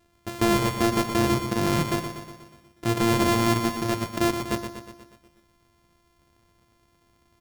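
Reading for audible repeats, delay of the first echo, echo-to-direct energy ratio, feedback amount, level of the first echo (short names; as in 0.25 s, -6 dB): 6, 0.121 s, -6.5 dB, 57%, -8.0 dB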